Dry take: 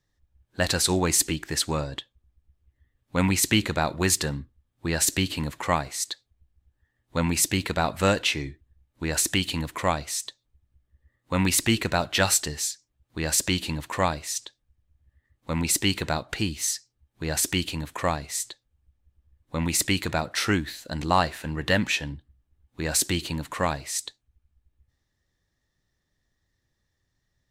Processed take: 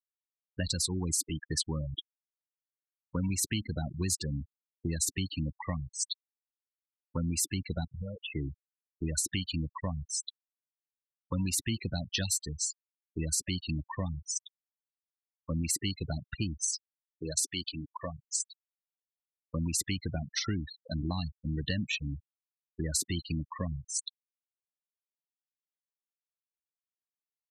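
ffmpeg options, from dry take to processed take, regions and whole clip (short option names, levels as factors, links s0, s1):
-filter_complex "[0:a]asettb=1/sr,asplit=3[s0][s1][s2];[s0]atrim=end=7.844[s3];[s1]atrim=start=7.84:end=8.35,asetpts=PTS-STARTPTS,afade=t=in:d=0.004:c=qsin,afade=t=out:st=0.506:d=0.004:c=qsin,lowpass=8700,lowshelf=f=73:g=8.5,acompressor=threshold=0.0282:ratio=16:attack=3.2:release=140:knee=1:detection=peak[s4];[s2]atrim=start=8.346[s5];[s3][s4]acrossfade=d=0.004:c1=hsin:c2=qsin[s6];[s6][s5]acrossfade=d=0.004:c1=qsin:c2=hsin,asettb=1/sr,asplit=3[s7][s8][s9];[s7]atrim=end=16.734[s10];[s8]atrim=start=16.73:end=18.5,asetpts=PTS-STARTPTS,afade=t=in:d=0.004:c=qsin,afade=t=out:st=1.766:d=0.004:c=qsin,bass=f=250:g=-9,treble=f=4000:g=9,adynamicsmooth=sensitivity=1:basefreq=5100[s11];[s9]atrim=start=18.496[s12];[s10][s11]acrossfade=d=0.004:c1=hsin:c2=qsin[s13];[s13][s12]acrossfade=d=0.004:c1=qsin:c2=hsin,acrossover=split=250|3000[s14][s15][s16];[s15]acompressor=threshold=0.0158:ratio=5[s17];[s14][s17][s16]amix=inputs=3:normalize=0,afftfilt=real='re*gte(hypot(re,im),0.0562)':imag='im*gte(hypot(re,im),0.0562)':win_size=1024:overlap=0.75,acompressor=threshold=0.0398:ratio=5"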